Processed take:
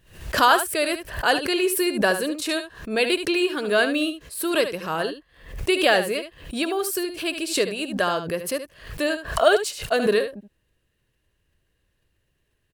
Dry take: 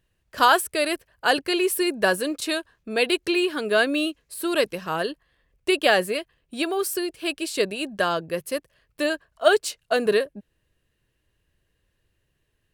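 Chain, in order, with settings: on a send: echo 73 ms -10 dB; on the sum: backwards sustainer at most 110 dB/s

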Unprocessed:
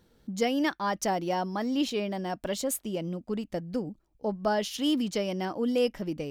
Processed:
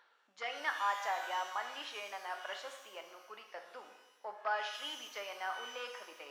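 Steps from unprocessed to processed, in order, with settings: reverse; upward compressor, threshold -28 dBFS; reverse; added harmonics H 5 -16 dB, 7 -21 dB, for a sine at -14.5 dBFS; ladder high-pass 900 Hz, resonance 25%; tape spacing loss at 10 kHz 37 dB; shimmer reverb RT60 1 s, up +12 st, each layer -8 dB, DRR 4.5 dB; gain +6 dB

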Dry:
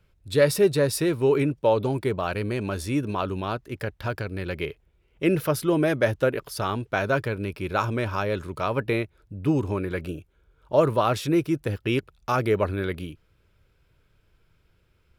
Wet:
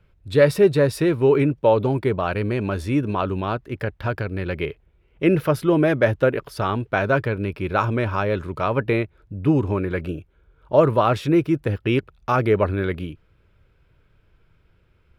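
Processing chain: tone controls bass +1 dB, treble -11 dB; gain +4 dB

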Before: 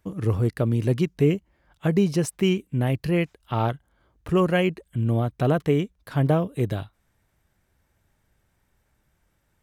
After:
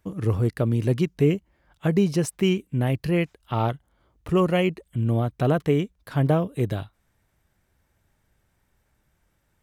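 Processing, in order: 3.53–5 notch 1600 Hz, Q 11

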